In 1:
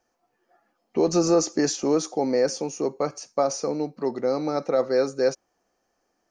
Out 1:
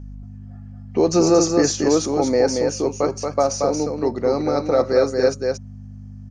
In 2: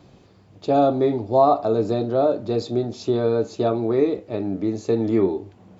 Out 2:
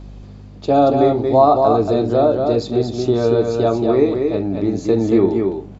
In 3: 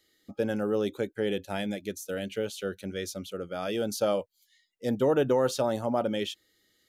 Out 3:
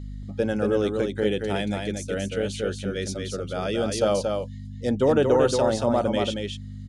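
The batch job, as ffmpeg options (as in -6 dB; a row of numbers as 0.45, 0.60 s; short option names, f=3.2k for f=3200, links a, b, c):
-af "aeval=exprs='val(0)+0.0126*(sin(2*PI*50*n/s)+sin(2*PI*2*50*n/s)/2+sin(2*PI*3*50*n/s)/3+sin(2*PI*4*50*n/s)/4+sin(2*PI*5*50*n/s)/5)':c=same,aecho=1:1:229:0.596,aresample=22050,aresample=44100,volume=4dB"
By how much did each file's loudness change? +5.0, +5.0, +5.0 LU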